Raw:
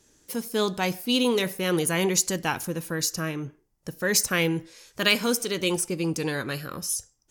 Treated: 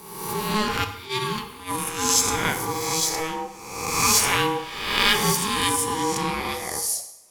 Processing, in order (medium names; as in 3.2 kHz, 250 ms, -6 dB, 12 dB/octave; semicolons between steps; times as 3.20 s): reverse spectral sustain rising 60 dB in 1.10 s; 0.84–2.21 s: gate -19 dBFS, range -16 dB; ring modulator 640 Hz; hum notches 50/100/150 Hz; two-slope reverb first 0.75 s, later 2.2 s, from -27 dB, DRR 6.5 dB; trim +2 dB